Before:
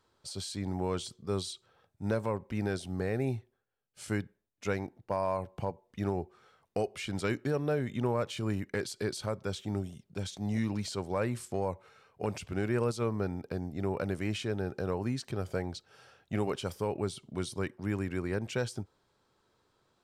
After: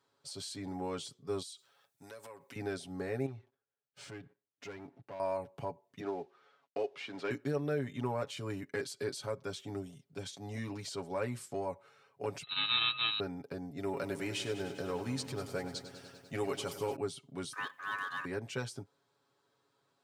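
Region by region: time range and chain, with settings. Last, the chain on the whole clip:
1.42–2.56 tilt +3.5 dB/oct + compressor 10:1, threshold -41 dBFS
3.26–5.2 air absorption 110 m + compressor 2:1, threshold -52 dBFS + sample leveller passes 2
6–7.31 CVSD 64 kbps + three-band isolator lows -16 dB, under 210 Hz, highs -24 dB, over 4900 Hz
12.43–13.2 sample sorter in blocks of 32 samples + high shelf 2400 Hz +6 dB + inverted band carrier 4000 Hz
13.77–16.96 high shelf 3100 Hz +7 dB + lo-fi delay 99 ms, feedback 80%, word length 10-bit, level -12.5 dB
17.53–18.25 G.711 law mismatch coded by mu + ring modulator 1400 Hz
whole clip: HPF 78 Hz; low shelf 100 Hz -9.5 dB; comb 7.2 ms, depth 72%; gain -5 dB

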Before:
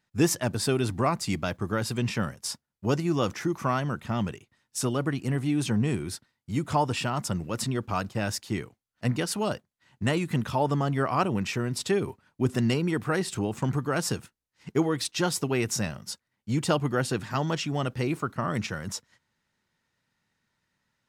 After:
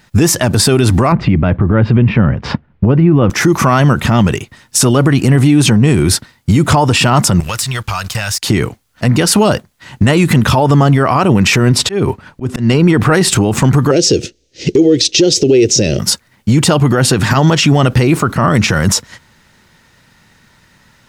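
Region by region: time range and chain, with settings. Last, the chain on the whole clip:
1.12–3.3 LPF 2700 Hz 24 dB/oct + low shelf 460 Hz +10 dB
7.4–8.43 passive tone stack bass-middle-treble 10-0-10 + sample leveller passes 2 + compressor, threshold -44 dBFS
11.69–13.13 high shelf 6100 Hz -9 dB + compressor 2:1, threshold -27 dBFS + auto swell 0.384 s
13.91–15.99 block floating point 7-bit + EQ curve 220 Hz 0 dB, 360 Hz +14 dB, 540 Hz +9 dB, 1000 Hz -22 dB, 2600 Hz +3 dB, 6200 Hz +8 dB, 11000 Hz -18 dB
whole clip: low shelf 67 Hz +7.5 dB; compressor, threshold -28 dBFS; maximiser +28.5 dB; gain -1 dB

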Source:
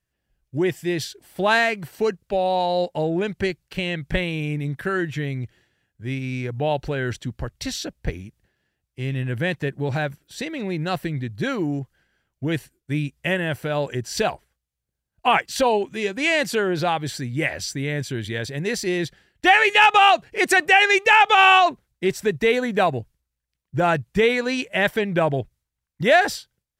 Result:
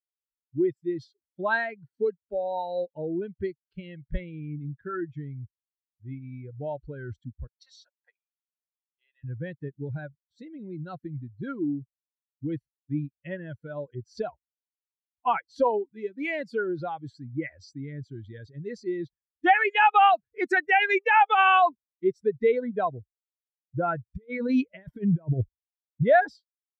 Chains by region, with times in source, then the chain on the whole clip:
7.47–9.24 HPF 710 Hz 24 dB/oct + notch 2200 Hz, Q 9.6
24.05–26.06 negative-ratio compressor -24 dBFS, ratio -0.5 + low shelf 340 Hz +4.5 dB
whole clip: per-bin expansion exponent 2; LPF 1900 Hz 12 dB/oct

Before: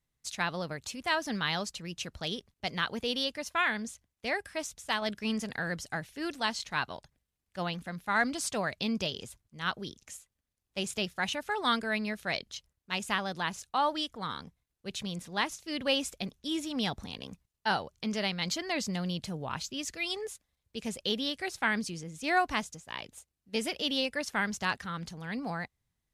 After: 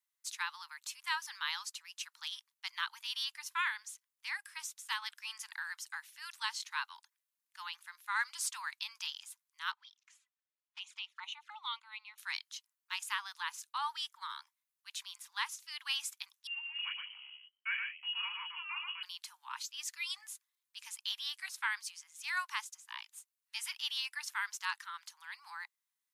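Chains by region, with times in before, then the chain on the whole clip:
9.72–12.18 LPF 3400 Hz + envelope flanger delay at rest 4.9 ms, full sweep at -31.5 dBFS
16.47–19.03 chorus 1.8 Hz, delay 18.5 ms, depth 6.6 ms + echo 0.118 s -4.5 dB + inverted band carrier 3100 Hz
whole clip: steep high-pass 890 Hz 96 dB/oct; high shelf 9900 Hz +11 dB; gain -5.5 dB

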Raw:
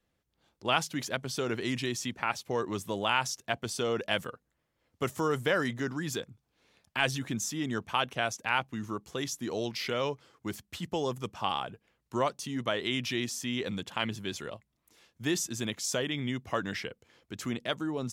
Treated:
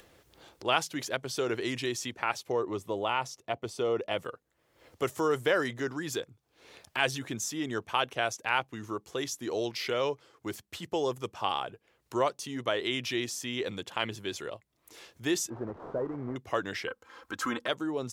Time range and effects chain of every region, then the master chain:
2.52–4.25 high shelf 2600 Hz -10 dB + notch 1600 Hz, Q 6
15.5–16.36 delta modulation 16 kbps, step -39.5 dBFS + LPF 1200 Hz 24 dB/oct + backlash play -57 dBFS
16.87–17.68 band shelf 1200 Hz +12.5 dB 1.1 oct + comb 3.8 ms, depth 72%
whole clip: bell 110 Hz +6.5 dB 1.6 oct; upward compressor, threshold -39 dBFS; resonant low shelf 270 Hz -8.5 dB, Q 1.5

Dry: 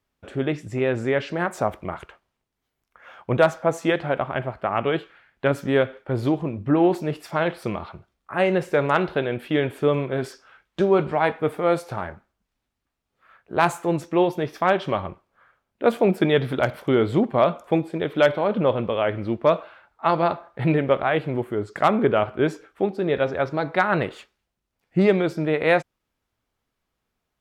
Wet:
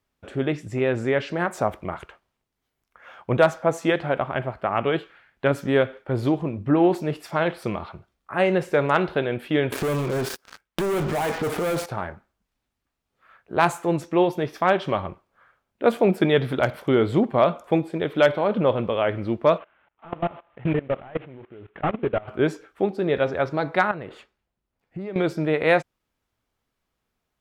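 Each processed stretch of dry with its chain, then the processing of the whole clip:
9.72–11.86 switching dead time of 0.076 ms + sample leveller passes 5 + compressor 10:1, threshold -23 dBFS
19.58–22.28 CVSD 16 kbps + level quantiser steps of 21 dB
23.91–25.16 high shelf 2900 Hz -9.5 dB + notch 5800 Hz, Q 28 + compressor 5:1, threshold -31 dBFS
whole clip: dry

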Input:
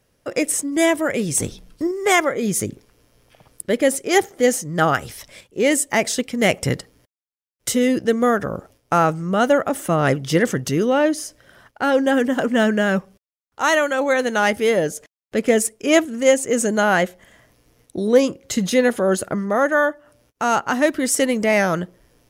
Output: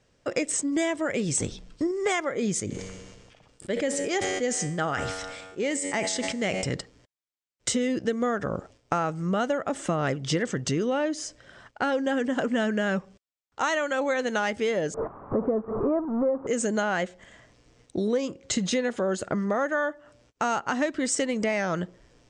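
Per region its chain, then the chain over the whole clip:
2.6–6.74 resonator 94 Hz, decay 1.9 s + sustainer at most 37 dB/s
14.94–16.47 zero-crossing step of -19 dBFS + elliptic low-pass 1200 Hz, stop band 80 dB
whole clip: elliptic low-pass 8000 Hz, stop band 60 dB; compressor 6:1, threshold -23 dBFS

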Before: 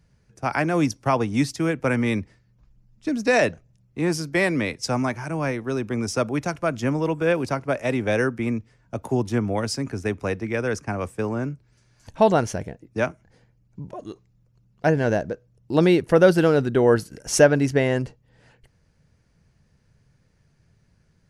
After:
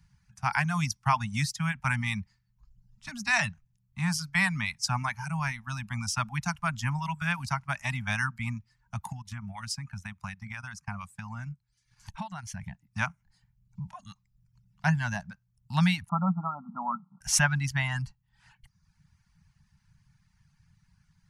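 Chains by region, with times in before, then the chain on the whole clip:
9.12–12.63 transient shaper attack +1 dB, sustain -7 dB + compressor 5:1, threshold -28 dBFS
16.09–17.21 G.711 law mismatch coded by mu + brick-wall FIR band-pass 160–1400 Hz
whole clip: reverb removal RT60 0.75 s; Chebyshev band-stop 190–870 Hz, order 3

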